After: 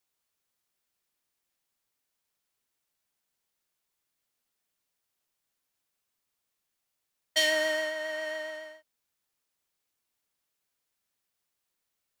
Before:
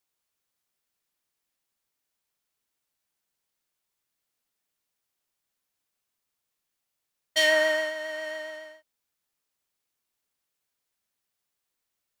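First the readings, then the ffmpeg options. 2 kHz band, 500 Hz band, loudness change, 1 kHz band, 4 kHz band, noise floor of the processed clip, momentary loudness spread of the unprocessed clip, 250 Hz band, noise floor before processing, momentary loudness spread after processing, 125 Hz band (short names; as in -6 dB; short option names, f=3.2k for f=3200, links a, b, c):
-4.0 dB, -4.0 dB, -4.0 dB, -4.5 dB, -1.5 dB, -83 dBFS, 17 LU, -1.5 dB, -83 dBFS, 16 LU, n/a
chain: -filter_complex "[0:a]acrossover=split=340|3000[a][b][c];[b]acompressor=threshold=-29dB:ratio=2.5[d];[a][d][c]amix=inputs=3:normalize=0"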